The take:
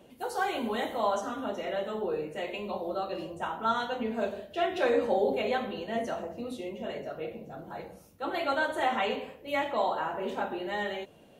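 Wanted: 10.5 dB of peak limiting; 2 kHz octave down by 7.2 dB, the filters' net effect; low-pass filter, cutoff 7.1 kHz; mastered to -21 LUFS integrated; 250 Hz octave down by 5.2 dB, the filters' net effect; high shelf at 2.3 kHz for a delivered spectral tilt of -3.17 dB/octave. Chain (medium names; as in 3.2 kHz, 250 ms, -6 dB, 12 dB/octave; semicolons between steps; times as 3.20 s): low-pass 7.1 kHz; peaking EQ 250 Hz -6.5 dB; peaking EQ 2 kHz -8 dB; treble shelf 2.3 kHz -3.5 dB; trim +17 dB; peak limiter -11 dBFS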